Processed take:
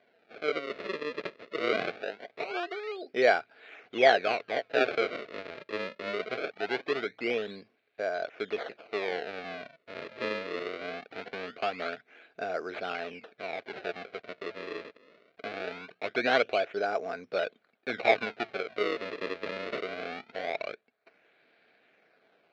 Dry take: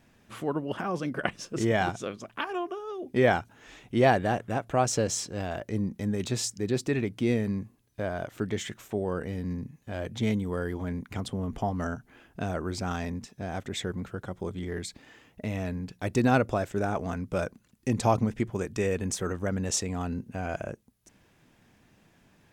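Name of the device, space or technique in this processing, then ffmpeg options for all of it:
circuit-bent sampling toy: -af "acrusher=samples=33:mix=1:aa=0.000001:lfo=1:lforange=52.8:lforate=0.22,highpass=430,equalizer=f=440:t=q:w=4:g=8,equalizer=f=670:t=q:w=4:g=8,equalizer=f=960:t=q:w=4:g=-8,equalizer=f=1.5k:t=q:w=4:g=7,equalizer=f=2.3k:t=q:w=4:g=10,equalizer=f=4.1k:t=q:w=4:g=5,lowpass=f=4.2k:w=0.5412,lowpass=f=4.2k:w=1.3066,volume=-3.5dB"

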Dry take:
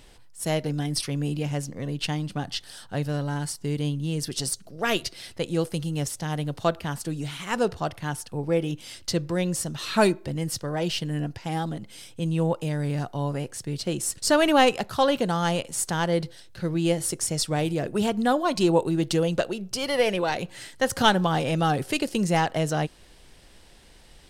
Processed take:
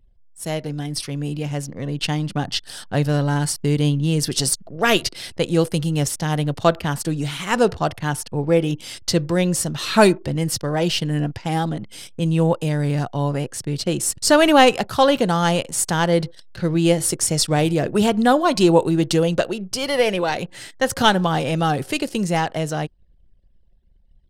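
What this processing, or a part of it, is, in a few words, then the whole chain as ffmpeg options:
voice memo with heavy noise removal: -af "anlmdn=0.0251,dynaudnorm=f=140:g=31:m=10dB"

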